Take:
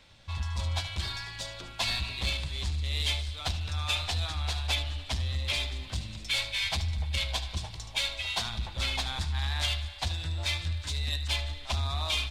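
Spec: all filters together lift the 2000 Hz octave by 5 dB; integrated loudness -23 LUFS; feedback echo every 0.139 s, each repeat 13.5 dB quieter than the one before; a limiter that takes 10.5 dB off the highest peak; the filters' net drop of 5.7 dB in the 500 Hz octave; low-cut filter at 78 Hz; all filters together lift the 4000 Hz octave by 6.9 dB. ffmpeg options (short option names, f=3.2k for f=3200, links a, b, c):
-af "highpass=78,equalizer=f=500:t=o:g=-8.5,equalizer=f=2k:t=o:g=4,equalizer=f=4k:t=o:g=7,alimiter=limit=-22dB:level=0:latency=1,aecho=1:1:139|278:0.211|0.0444,volume=7.5dB"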